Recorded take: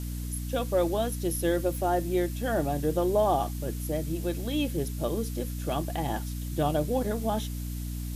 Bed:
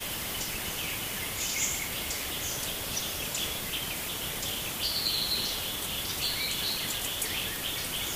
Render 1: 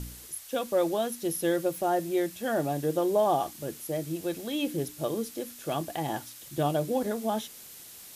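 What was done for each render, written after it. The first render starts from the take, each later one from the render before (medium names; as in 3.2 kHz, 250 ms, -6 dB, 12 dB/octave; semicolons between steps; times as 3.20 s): de-hum 60 Hz, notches 5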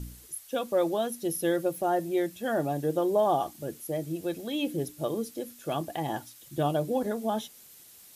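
noise reduction 7 dB, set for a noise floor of -47 dBFS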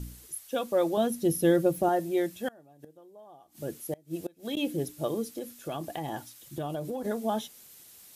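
0.97–1.89 s: bass shelf 300 Hz +11.5 dB; 2.48–4.57 s: inverted gate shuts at -23 dBFS, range -27 dB; 5.25–7.05 s: compression, threshold -30 dBFS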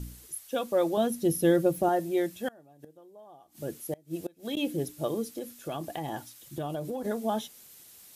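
no audible change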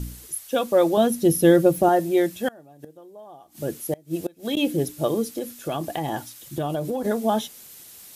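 trim +7.5 dB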